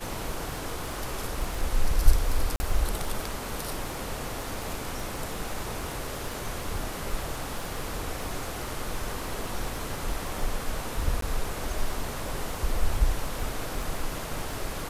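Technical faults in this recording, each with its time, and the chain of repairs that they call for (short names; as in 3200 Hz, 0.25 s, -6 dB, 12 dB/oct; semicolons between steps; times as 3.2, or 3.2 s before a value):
crackle 26/s -31 dBFS
2.56–2.6 gap 40 ms
11.21–11.22 gap 13 ms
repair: de-click; interpolate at 2.56, 40 ms; interpolate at 11.21, 13 ms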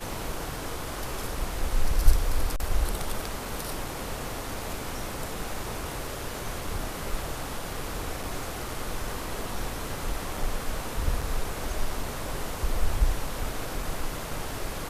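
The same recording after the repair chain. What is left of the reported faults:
none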